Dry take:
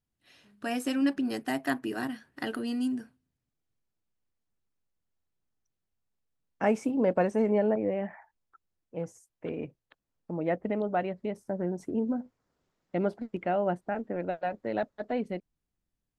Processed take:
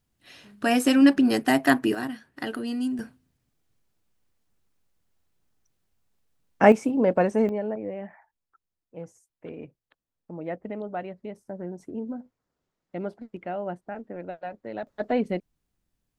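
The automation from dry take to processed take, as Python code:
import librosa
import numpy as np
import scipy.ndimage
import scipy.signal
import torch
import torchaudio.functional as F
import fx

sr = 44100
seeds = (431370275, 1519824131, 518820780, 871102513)

y = fx.gain(x, sr, db=fx.steps((0.0, 10.0), (1.95, 2.0), (2.99, 10.5), (6.72, 4.0), (7.49, -4.0), (14.87, 6.5)))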